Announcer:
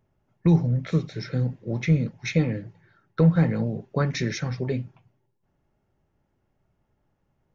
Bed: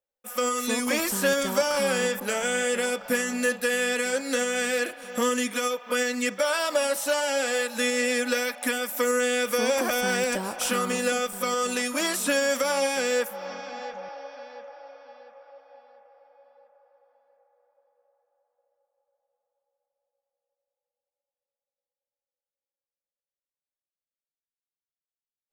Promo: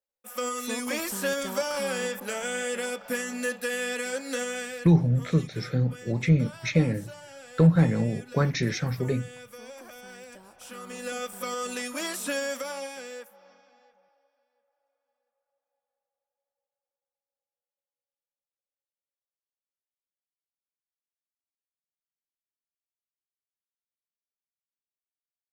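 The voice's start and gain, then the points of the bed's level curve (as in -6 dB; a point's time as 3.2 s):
4.40 s, 0.0 dB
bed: 4.51 s -5 dB
5.07 s -20.5 dB
10.56 s -20.5 dB
11.24 s -6 dB
12.41 s -6 dB
14.48 s -34 dB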